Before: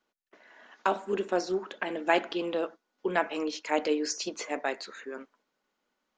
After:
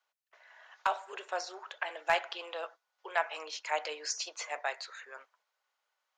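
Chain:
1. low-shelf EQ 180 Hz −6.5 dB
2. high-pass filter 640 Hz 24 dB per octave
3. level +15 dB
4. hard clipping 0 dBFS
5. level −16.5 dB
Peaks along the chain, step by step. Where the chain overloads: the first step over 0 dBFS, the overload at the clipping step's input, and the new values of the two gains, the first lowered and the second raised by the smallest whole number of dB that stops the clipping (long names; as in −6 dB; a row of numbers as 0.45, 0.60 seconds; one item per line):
−9.5, −11.0, +4.0, 0.0, −16.5 dBFS
step 3, 4.0 dB
step 3 +11 dB, step 5 −12.5 dB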